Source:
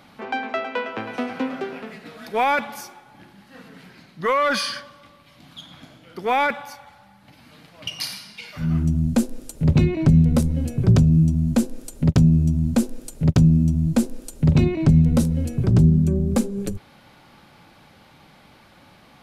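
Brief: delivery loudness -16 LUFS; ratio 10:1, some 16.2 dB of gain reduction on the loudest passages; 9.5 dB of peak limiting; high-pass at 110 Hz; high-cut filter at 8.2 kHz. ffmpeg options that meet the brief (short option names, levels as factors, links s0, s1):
-af "highpass=110,lowpass=8200,acompressor=threshold=0.0355:ratio=10,volume=10,alimiter=limit=0.501:level=0:latency=1"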